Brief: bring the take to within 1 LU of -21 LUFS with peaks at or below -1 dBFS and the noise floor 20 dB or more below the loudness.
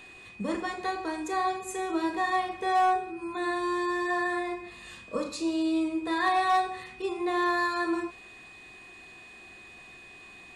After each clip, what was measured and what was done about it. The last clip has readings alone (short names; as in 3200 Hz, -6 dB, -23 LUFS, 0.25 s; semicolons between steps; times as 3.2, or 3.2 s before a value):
clipped 0.2%; flat tops at -18.0 dBFS; steady tone 2500 Hz; tone level -48 dBFS; loudness -29.0 LUFS; peak -18.0 dBFS; loudness target -21.0 LUFS
-> clip repair -18 dBFS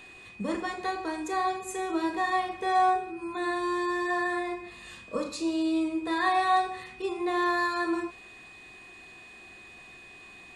clipped 0.0%; steady tone 2500 Hz; tone level -48 dBFS
-> notch 2500 Hz, Q 30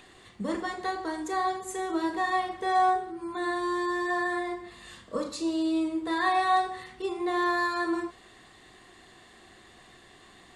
steady tone none; loudness -29.0 LUFS; peak -14.5 dBFS; loudness target -21.0 LUFS
-> gain +8 dB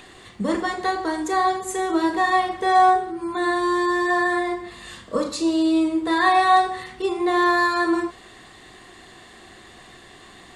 loudness -21.0 LUFS; peak -6.5 dBFS; noise floor -47 dBFS